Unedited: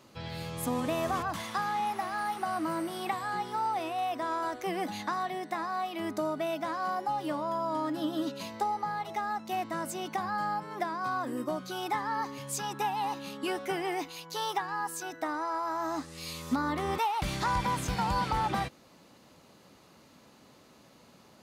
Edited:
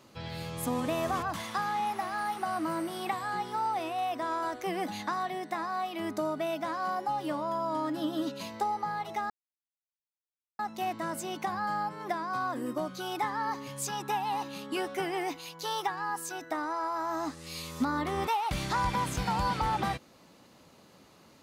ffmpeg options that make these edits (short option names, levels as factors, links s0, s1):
-filter_complex "[0:a]asplit=2[s0][s1];[s0]atrim=end=9.3,asetpts=PTS-STARTPTS,afade=t=out:st=9.296:d=0.004:c=hsin,apad=pad_dur=1.29[s2];[s1]atrim=start=9.3,asetpts=PTS-STARTPTS,afade=t=in:d=0.004:c=hsin[s3];[s2][s3]concat=n=2:v=0:a=1"